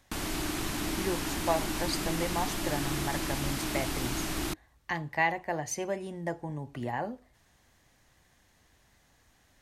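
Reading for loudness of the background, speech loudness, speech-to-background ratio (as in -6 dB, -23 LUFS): -33.0 LUFS, -34.5 LUFS, -1.5 dB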